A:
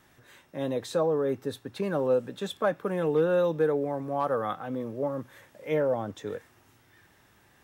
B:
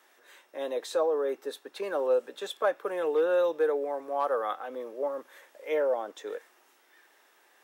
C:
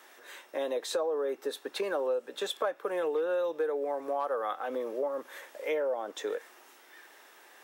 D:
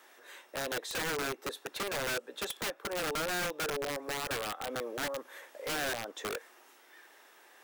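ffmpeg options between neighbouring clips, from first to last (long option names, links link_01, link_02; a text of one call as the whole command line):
ffmpeg -i in.wav -af "highpass=frequency=380:width=0.5412,highpass=frequency=380:width=1.3066" out.wav
ffmpeg -i in.wav -af "acompressor=threshold=-37dB:ratio=4,volume=7dB" out.wav
ffmpeg -i in.wav -af "aeval=exprs='(mod(21.1*val(0)+1,2)-1)/21.1':channel_layout=same,volume=-3dB" out.wav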